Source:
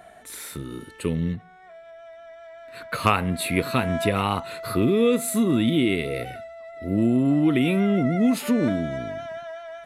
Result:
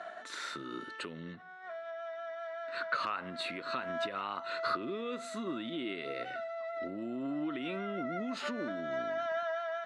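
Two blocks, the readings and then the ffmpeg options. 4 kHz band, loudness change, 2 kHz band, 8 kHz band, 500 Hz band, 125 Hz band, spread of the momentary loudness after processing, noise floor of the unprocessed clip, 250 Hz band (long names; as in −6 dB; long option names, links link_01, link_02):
−9.0 dB, −14.5 dB, −7.5 dB, −19.0 dB, −11.0 dB, −24.5 dB, 8 LU, −48 dBFS, −18.0 dB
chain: -af "agate=range=-33dB:threshold=-44dB:ratio=3:detection=peak,acompressor=threshold=-23dB:ratio=4,alimiter=level_in=0.5dB:limit=-24dB:level=0:latency=1:release=355,volume=-0.5dB,acompressor=mode=upward:threshold=-38dB:ratio=2.5,highpass=430,equalizer=frequency=460:width_type=q:width=4:gain=-8,equalizer=frequency=810:width_type=q:width=4:gain=-6,equalizer=frequency=1400:width_type=q:width=4:gain=5,equalizer=frequency=2300:width_type=q:width=4:gain=-8,equalizer=frequency=3300:width_type=q:width=4:gain=-4,equalizer=frequency=5100:width_type=q:width=4:gain=-4,lowpass=frequency=5300:width=0.5412,lowpass=frequency=5300:width=1.3066,volume=3.5dB"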